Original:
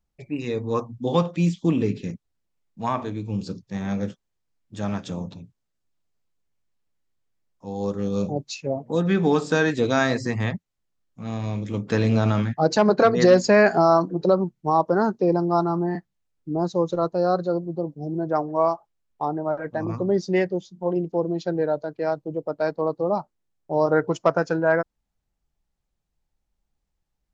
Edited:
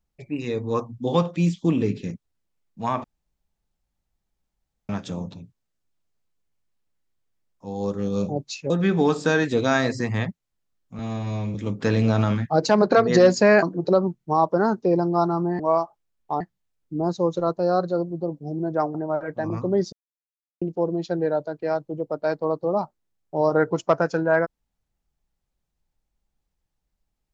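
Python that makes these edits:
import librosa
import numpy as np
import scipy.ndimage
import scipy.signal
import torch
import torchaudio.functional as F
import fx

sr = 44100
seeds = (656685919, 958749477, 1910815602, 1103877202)

y = fx.edit(x, sr, fx.room_tone_fill(start_s=3.04, length_s=1.85),
    fx.cut(start_s=8.7, length_s=0.26),
    fx.stretch_span(start_s=11.25, length_s=0.37, factor=1.5),
    fx.cut(start_s=13.7, length_s=0.29),
    fx.move(start_s=18.5, length_s=0.81, to_s=15.96),
    fx.silence(start_s=20.29, length_s=0.69), tone=tone)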